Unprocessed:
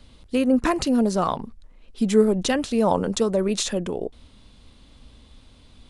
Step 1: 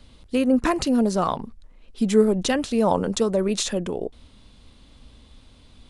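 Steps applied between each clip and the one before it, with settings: no audible change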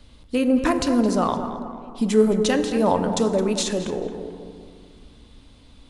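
tape echo 219 ms, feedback 46%, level -9 dB, low-pass 2.3 kHz; FDN reverb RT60 2.1 s, low-frequency decay 1.25×, high-frequency decay 0.45×, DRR 8.5 dB

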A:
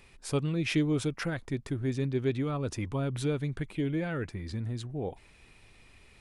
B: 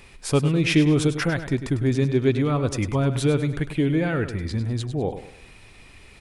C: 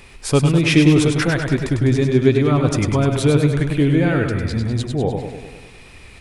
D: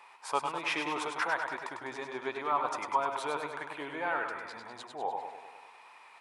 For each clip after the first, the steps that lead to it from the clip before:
feedback delay 101 ms, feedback 38%, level -11 dB; trim +9 dB
modulated delay 100 ms, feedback 61%, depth 68 cents, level -7 dB; trim +4.5 dB
resonant high-pass 930 Hz, resonance Q 5.2; treble shelf 2.4 kHz -10.5 dB; trim -8.5 dB

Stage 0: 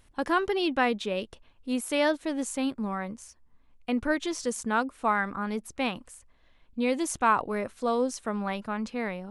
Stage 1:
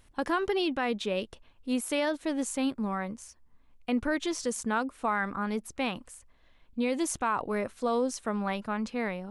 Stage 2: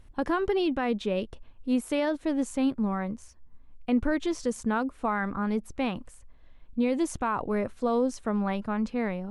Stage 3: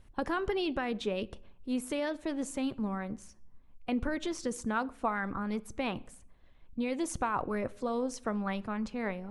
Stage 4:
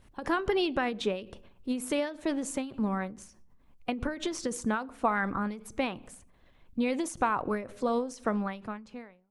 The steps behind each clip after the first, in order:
peak limiter -19 dBFS, peak gain reduction 7.5 dB
tilt EQ -2 dB/octave
on a send at -16 dB: reverberation RT60 0.65 s, pre-delay 5 ms; on the sum: harmonic-percussive split harmonic -7 dB
fade out at the end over 1.03 s; bass shelf 65 Hz -8.5 dB; endings held to a fixed fall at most 120 dB/s; trim +5 dB

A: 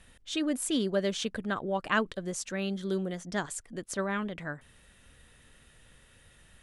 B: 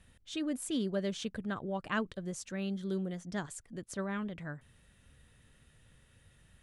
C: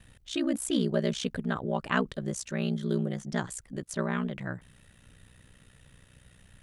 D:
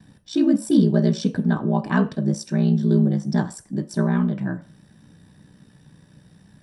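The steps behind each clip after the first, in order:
peaking EQ 110 Hz +8.5 dB 2.1 oct; trim -7.5 dB
ring modulator 31 Hz; trim +9 dB
reverberation RT60 0.35 s, pre-delay 3 ms, DRR 5 dB; trim -5.5 dB

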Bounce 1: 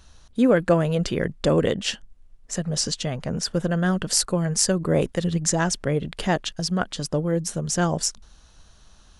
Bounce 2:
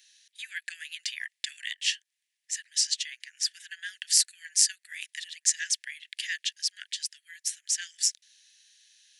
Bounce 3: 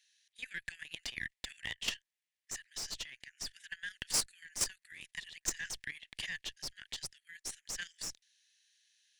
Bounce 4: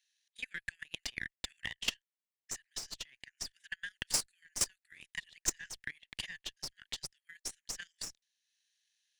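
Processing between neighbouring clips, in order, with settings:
steep high-pass 1.7 kHz 96 dB/octave
valve stage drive 23 dB, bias 0.45; treble shelf 2.2 kHz -7.5 dB; level held to a coarse grid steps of 11 dB; trim +4.5 dB
transient shaper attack +11 dB, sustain -4 dB; trim -8 dB

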